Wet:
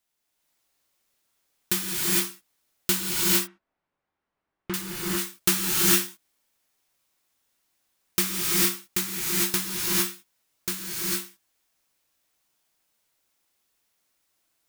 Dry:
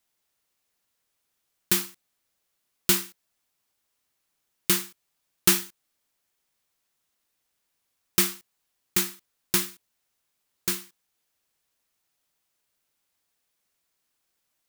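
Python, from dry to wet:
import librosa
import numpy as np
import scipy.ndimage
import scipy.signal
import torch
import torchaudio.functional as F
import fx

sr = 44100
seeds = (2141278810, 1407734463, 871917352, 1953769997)

y = fx.lowpass(x, sr, hz=1500.0, slope=12, at=(3.0, 4.74))
y = fx.rev_gated(y, sr, seeds[0], gate_ms=480, shape='rising', drr_db=-6.0)
y = F.gain(torch.from_numpy(y), -3.0).numpy()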